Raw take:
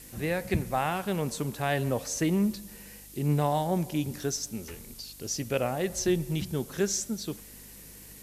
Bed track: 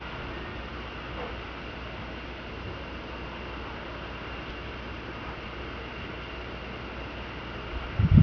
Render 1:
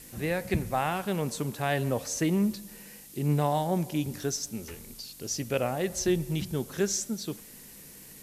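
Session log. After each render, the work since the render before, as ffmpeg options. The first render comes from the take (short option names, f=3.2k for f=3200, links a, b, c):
-af "bandreject=f=50:t=h:w=4,bandreject=f=100:t=h:w=4"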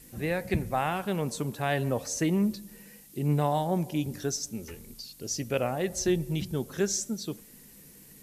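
-af "afftdn=nr=6:nf=-49"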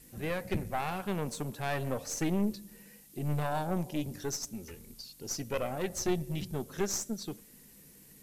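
-af "aeval=exprs='(tanh(14.1*val(0)+0.7)-tanh(0.7))/14.1':c=same"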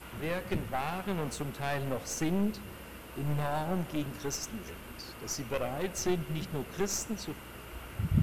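-filter_complex "[1:a]volume=-9.5dB[a];[0:a][a]amix=inputs=2:normalize=0"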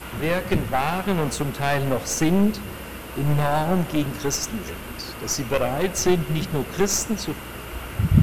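-af "volume=11dB"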